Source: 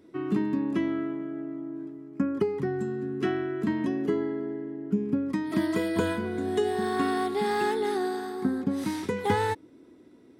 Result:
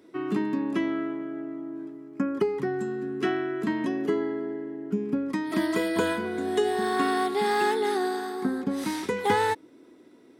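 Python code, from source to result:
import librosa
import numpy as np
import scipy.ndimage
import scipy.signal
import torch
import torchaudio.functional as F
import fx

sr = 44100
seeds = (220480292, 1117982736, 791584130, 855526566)

y = fx.highpass(x, sr, hz=360.0, slope=6)
y = y * librosa.db_to_amplitude(4.0)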